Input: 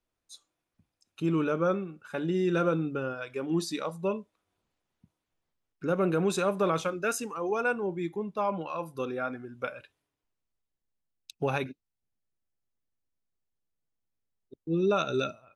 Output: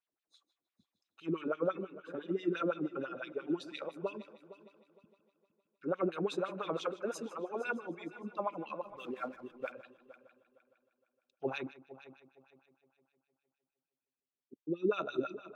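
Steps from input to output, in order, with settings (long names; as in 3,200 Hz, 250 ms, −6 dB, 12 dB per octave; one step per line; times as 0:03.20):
auto-filter band-pass sine 5.9 Hz 250–3,700 Hz
0:08.85–0:09.72: slack as between gear wheels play −58 dBFS
echo machine with several playback heads 154 ms, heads first and third, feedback 44%, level −17 dB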